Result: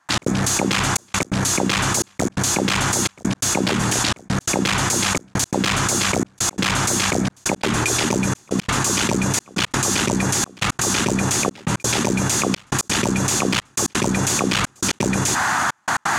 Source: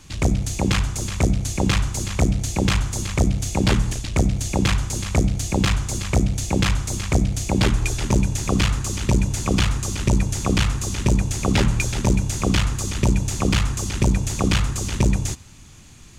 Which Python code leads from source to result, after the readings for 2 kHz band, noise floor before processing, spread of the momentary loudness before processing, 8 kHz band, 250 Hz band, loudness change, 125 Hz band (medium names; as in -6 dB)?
+7.0 dB, -44 dBFS, 3 LU, +8.5 dB, +1.5 dB, +2.0 dB, -4.5 dB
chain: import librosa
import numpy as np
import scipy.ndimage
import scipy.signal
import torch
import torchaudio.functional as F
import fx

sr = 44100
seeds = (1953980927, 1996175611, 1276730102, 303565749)

y = scipy.signal.sosfilt(scipy.signal.butter(2, 230.0, 'highpass', fs=sr, output='sos'), x)
y = fx.dmg_noise_band(y, sr, seeds[0], low_hz=720.0, high_hz=1800.0, level_db=-43.0)
y = fx.step_gate(y, sr, bpm=171, pattern='.x.xxxxxxxx.', floor_db=-60.0, edge_ms=4.5)
y = fx.env_flatten(y, sr, amount_pct=100)